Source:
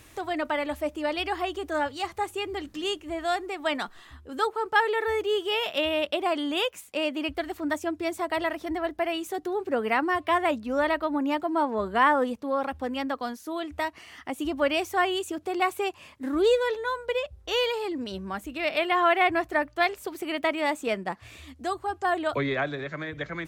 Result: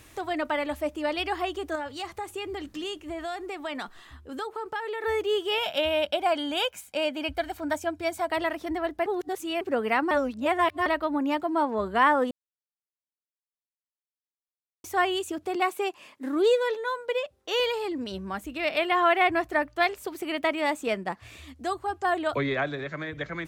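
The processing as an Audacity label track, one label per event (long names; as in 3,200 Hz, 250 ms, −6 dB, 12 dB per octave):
1.750000	5.040000	downward compressor 4 to 1, threshold −30 dBFS
5.580000	8.300000	comb filter 1.3 ms, depth 50%
9.060000	9.610000	reverse
10.110000	10.860000	reverse
12.310000	14.840000	silence
15.550000	17.600000	Chebyshev high-pass filter 270 Hz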